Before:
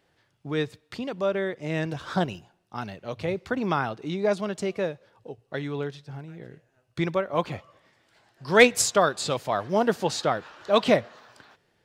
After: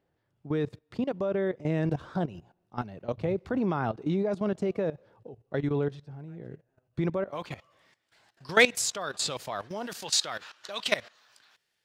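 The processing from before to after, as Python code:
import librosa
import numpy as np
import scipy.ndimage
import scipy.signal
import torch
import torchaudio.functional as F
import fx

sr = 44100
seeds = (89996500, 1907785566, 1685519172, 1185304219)

y = fx.level_steps(x, sr, step_db=16)
y = fx.tilt_shelf(y, sr, db=fx.steps((0.0, 6.5), (7.29, -3.5), (9.86, -10.0)), hz=1300.0)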